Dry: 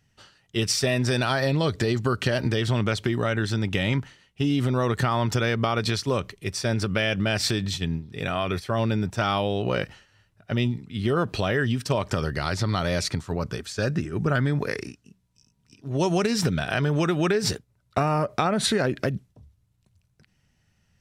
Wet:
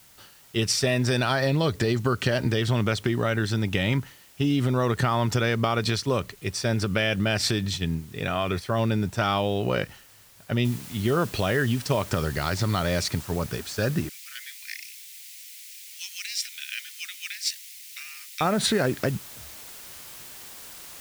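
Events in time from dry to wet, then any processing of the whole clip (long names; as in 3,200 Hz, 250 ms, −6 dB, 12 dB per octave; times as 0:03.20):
0:10.65: noise floor change −54 dB −43 dB
0:14.09–0:18.41: Chebyshev high-pass filter 2,100 Hz, order 4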